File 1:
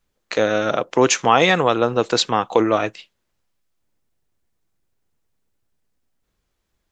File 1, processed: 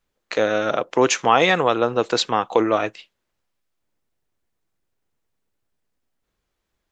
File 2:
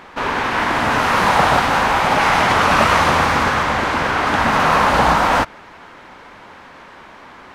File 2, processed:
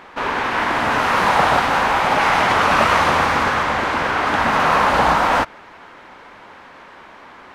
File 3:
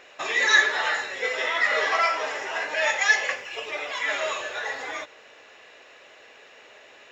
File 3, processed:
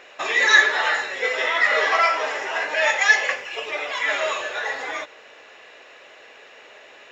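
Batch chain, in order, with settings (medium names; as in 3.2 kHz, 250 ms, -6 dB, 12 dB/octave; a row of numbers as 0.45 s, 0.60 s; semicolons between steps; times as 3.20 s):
tone controls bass -4 dB, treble -3 dB; peak normalisation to -2 dBFS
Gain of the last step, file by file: -1.0 dB, -1.0 dB, +4.0 dB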